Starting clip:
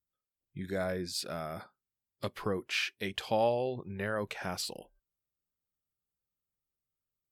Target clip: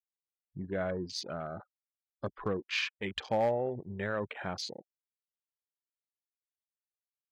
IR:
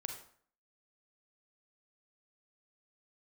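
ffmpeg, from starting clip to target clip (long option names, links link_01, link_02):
-af "afftfilt=real='re*gte(hypot(re,im),0.00891)':imag='im*gte(hypot(re,im),0.00891)':win_size=1024:overlap=0.75,afwtdn=0.00708,volume=22dB,asoftclip=hard,volume=-22dB"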